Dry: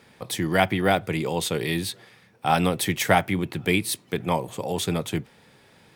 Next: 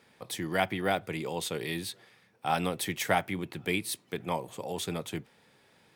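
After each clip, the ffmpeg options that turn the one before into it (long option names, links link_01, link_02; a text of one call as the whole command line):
ffmpeg -i in.wav -af "lowshelf=frequency=160:gain=-6.5,volume=-7dB" out.wav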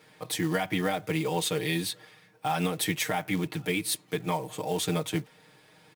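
ffmpeg -i in.wav -af "alimiter=limit=-22dB:level=0:latency=1:release=122,aecho=1:1:6.5:0.97,acrusher=bits=5:mode=log:mix=0:aa=0.000001,volume=2.5dB" out.wav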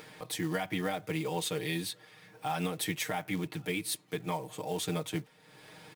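ffmpeg -i in.wav -af "acompressor=mode=upward:threshold=-36dB:ratio=2.5,volume=-5dB" out.wav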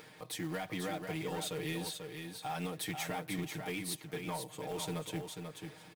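ffmpeg -i in.wav -filter_complex "[0:a]asoftclip=type=tanh:threshold=-26dB,acrusher=bits=5:mode=log:mix=0:aa=0.000001,asplit=2[link_01][link_02];[link_02]aecho=0:1:490|980|1470:0.501|0.0802|0.0128[link_03];[link_01][link_03]amix=inputs=2:normalize=0,volume=-4dB" out.wav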